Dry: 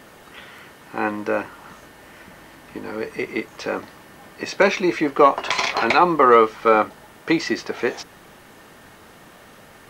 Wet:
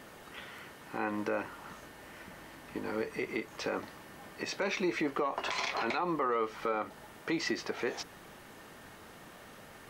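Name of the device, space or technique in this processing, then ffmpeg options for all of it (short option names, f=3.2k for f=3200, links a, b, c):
stacked limiters: -af "alimiter=limit=-7.5dB:level=0:latency=1:release=243,alimiter=limit=-12.5dB:level=0:latency=1:release=71,alimiter=limit=-17.5dB:level=0:latency=1:release=137,volume=-5.5dB"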